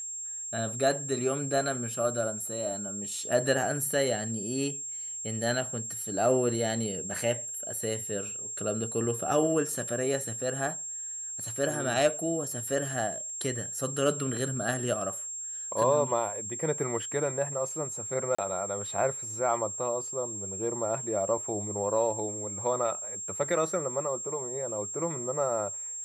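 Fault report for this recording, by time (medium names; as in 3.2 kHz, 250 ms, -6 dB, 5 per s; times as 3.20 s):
whine 7.5 kHz -35 dBFS
18.35–18.39 s: dropout 35 ms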